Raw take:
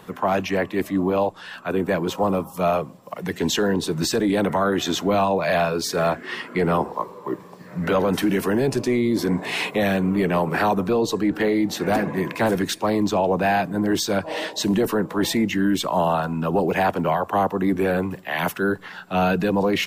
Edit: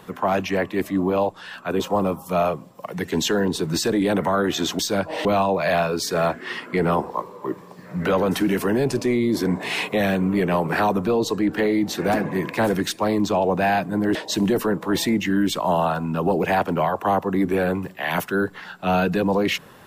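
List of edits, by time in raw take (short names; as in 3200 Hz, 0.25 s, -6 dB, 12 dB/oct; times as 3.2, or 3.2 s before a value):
1.8–2.08 cut
13.97–14.43 move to 5.07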